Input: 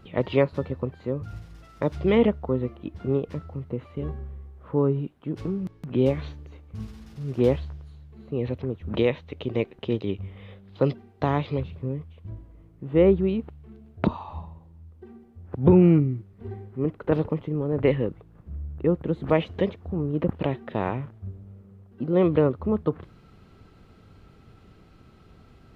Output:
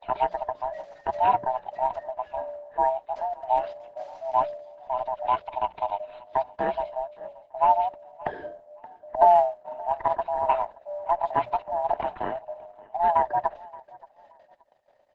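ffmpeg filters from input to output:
ffmpeg -i in.wav -filter_complex "[0:a]afftfilt=real='real(if(lt(b,1008),b+24*(1-2*mod(floor(b/24),2)),b),0)':imag='imag(if(lt(b,1008),b+24*(1-2*mod(floor(b/24),2)),b),0)':win_size=2048:overlap=0.75,acrossover=split=2500[link_01][link_02];[link_02]acompressor=threshold=-53dB:ratio=4:attack=1:release=60[link_03];[link_01][link_03]amix=inputs=2:normalize=0,agate=range=-56dB:threshold=-49dB:ratio=16:detection=peak,bass=frequency=250:gain=-4,treble=frequency=4000:gain=-2,acrossover=split=180|1300[link_04][link_05][link_06];[link_04]acompressor=threshold=-44dB:ratio=6[link_07];[link_07][link_05][link_06]amix=inputs=3:normalize=0,atempo=1.7,bandreject=frequency=60:width_type=h:width=6,bandreject=frequency=120:width_type=h:width=6,bandreject=frequency=180:width_type=h:width=6,aecho=1:1:575|1150:0.0794|0.0214,aresample=16000,aresample=44100" -ar 48000 -c:a libopus -b:a 12k out.opus

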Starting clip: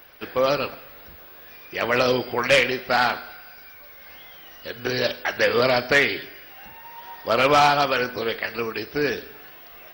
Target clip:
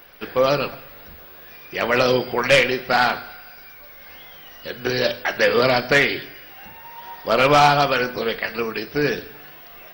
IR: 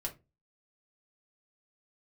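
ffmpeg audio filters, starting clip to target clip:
-filter_complex "[0:a]asplit=2[link_01][link_02];[1:a]atrim=start_sample=2205,lowshelf=frequency=380:gain=6.5[link_03];[link_02][link_03]afir=irnorm=-1:irlink=0,volume=-9.5dB[link_04];[link_01][link_04]amix=inputs=2:normalize=0"

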